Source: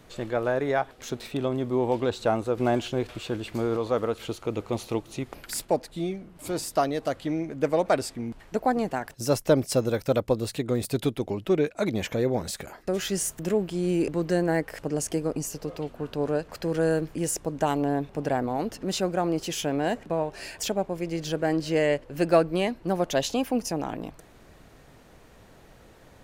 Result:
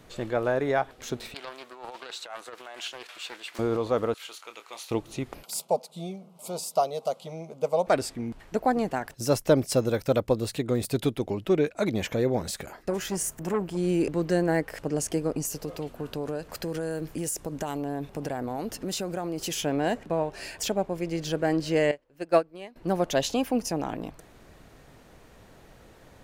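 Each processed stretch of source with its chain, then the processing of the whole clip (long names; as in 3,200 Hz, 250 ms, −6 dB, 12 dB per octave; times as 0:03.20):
0:01.34–0:03.59: compressor whose output falls as the input rises −26 dBFS, ratio −0.5 + high-pass filter 1,100 Hz + highs frequency-modulated by the lows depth 0.24 ms
0:04.14–0:04.91: high-pass filter 1,300 Hz + double-tracking delay 27 ms −9.5 dB
0:05.43–0:07.87: linear-phase brick-wall high-pass 150 Hz + low-shelf EQ 370 Hz +3.5 dB + phaser with its sweep stopped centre 720 Hz, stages 4
0:12.90–0:13.77: parametric band 3,700 Hz −5.5 dB 0.94 octaves + saturating transformer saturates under 670 Hz
0:15.45–0:19.55: high-shelf EQ 7,400 Hz +9.5 dB + downward compressor, threshold −27 dBFS + hard clipping −19.5 dBFS
0:21.91–0:22.76: bass and treble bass −6 dB, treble −1 dB + expander for the loud parts 2.5 to 1, over −29 dBFS
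whole clip: no processing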